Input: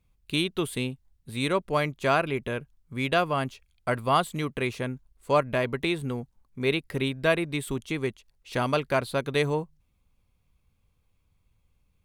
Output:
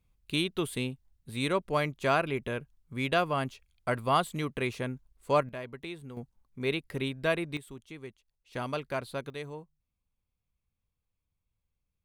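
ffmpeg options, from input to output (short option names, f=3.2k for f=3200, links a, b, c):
-af "asetnsamples=n=441:p=0,asendcmd='5.49 volume volume -13.5dB;6.17 volume volume -5dB;7.57 volume volume -15dB;8.55 volume volume -8.5dB;9.3 volume volume -15dB',volume=-3dB"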